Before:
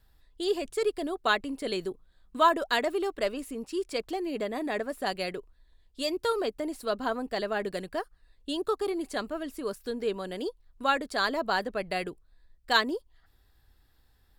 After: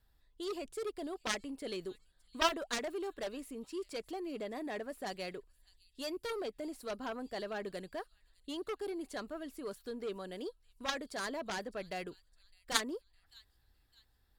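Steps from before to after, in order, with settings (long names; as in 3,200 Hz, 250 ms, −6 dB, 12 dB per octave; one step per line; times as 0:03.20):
delay with a high-pass on its return 609 ms, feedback 40%, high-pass 4,400 Hz, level −17.5 dB
gain on a spectral selection 0:05.76–0:05.99, 440–2,500 Hz −13 dB
harmonic generator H 3 −8 dB, 7 −30 dB, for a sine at −9 dBFS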